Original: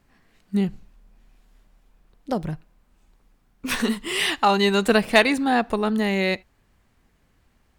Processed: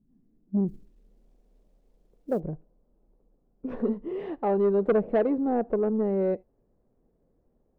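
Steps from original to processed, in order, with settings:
low-pass filter sweep 220 Hz → 500 Hz, 0:00.01–0:01.27
soft clipping −11.5 dBFS, distortion −15 dB
parametric band 73 Hz −8.5 dB 1.1 octaves
0:00.68–0:02.40: log-companded quantiser 8 bits
level −4.5 dB

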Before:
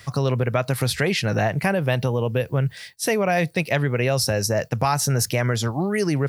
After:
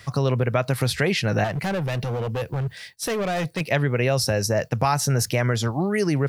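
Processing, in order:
high-shelf EQ 7,400 Hz −4.5 dB
0:01.44–0:03.61: gain into a clipping stage and back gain 22.5 dB

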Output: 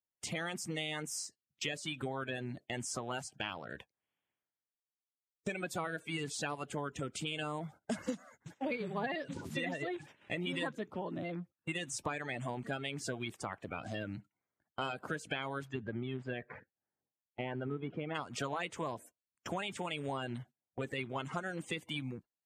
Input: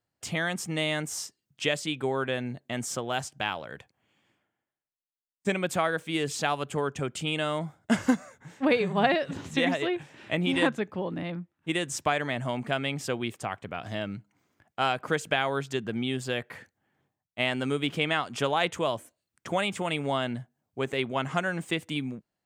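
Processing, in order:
spectral magnitudes quantised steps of 30 dB
0:15.64–0:18.14: low-pass filter 2,200 Hz → 1,100 Hz 12 dB per octave
noise gate −47 dBFS, range −18 dB
downward compressor 3 to 1, threshold −35 dBFS, peak gain reduction 13 dB
level −1.5 dB
MP3 80 kbit/s 32,000 Hz

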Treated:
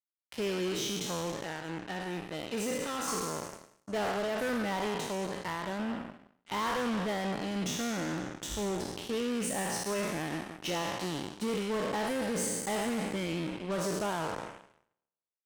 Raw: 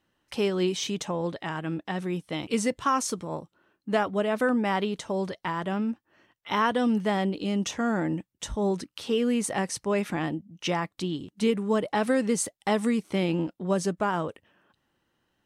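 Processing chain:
peak hold with a decay on every bin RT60 1.68 s
hard clipping −22.5 dBFS, distortion −9 dB
0:01.44–0:03.08: notch comb filter 1,100 Hz
harmonic generator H 7 −17 dB, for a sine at −19 dBFS
level −7.5 dB

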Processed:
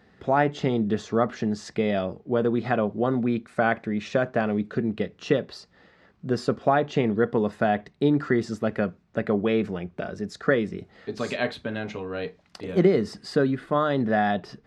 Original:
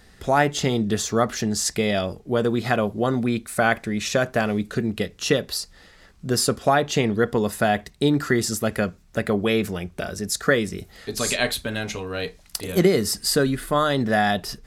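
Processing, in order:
high-pass filter 130 Hz 12 dB per octave
head-to-tape spacing loss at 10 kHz 30 dB

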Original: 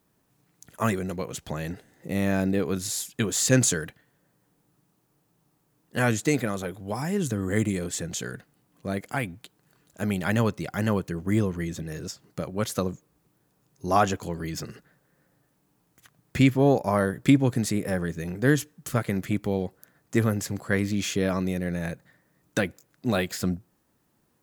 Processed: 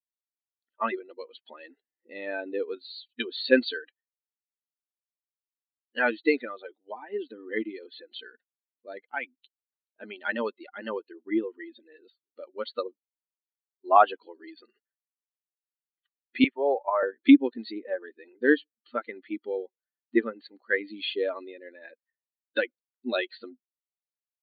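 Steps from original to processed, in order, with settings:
spectral dynamics exaggerated over time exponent 2
linear-phase brick-wall band-pass 240–4,600 Hz
0:16.44–0:17.03: three-way crossover with the lows and the highs turned down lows −22 dB, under 510 Hz, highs −14 dB, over 2,200 Hz
level +6 dB

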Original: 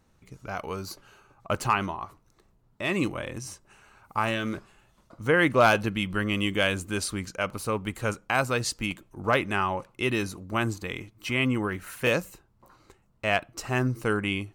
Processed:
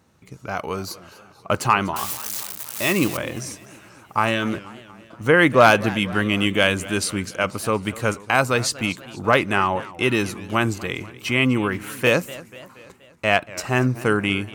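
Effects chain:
0:01.96–0:03.17: spike at every zero crossing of −23 dBFS
high-pass filter 88 Hz
feedback echo with a swinging delay time 240 ms, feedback 57%, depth 184 cents, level −18.5 dB
level +6.5 dB

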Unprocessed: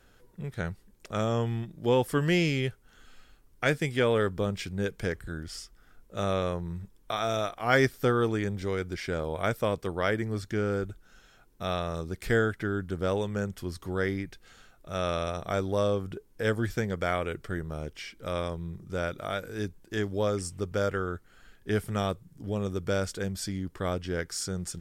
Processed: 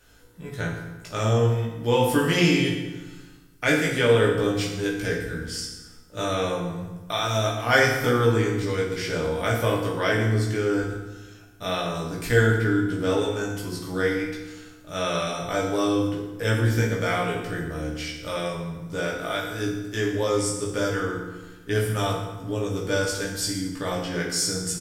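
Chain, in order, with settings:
high-shelf EQ 2,400 Hz +7.5 dB
double-tracking delay 17 ms −2.5 dB
feedback delay network reverb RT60 1.2 s, low-frequency decay 1.3×, high-frequency decay 0.75×, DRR −1.5 dB
level −2 dB

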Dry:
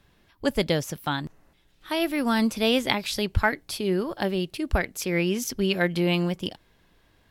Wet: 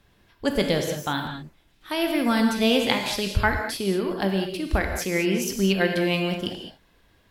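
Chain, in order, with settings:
reverb whose tail is shaped and stops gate 240 ms flat, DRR 3 dB

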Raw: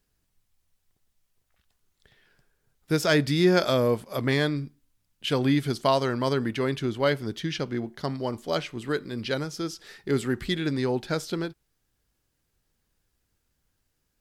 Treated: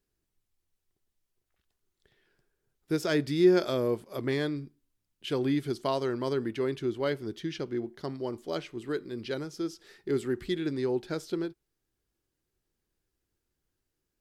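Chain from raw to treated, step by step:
parametric band 360 Hz +9.5 dB 0.56 octaves
level −8.5 dB

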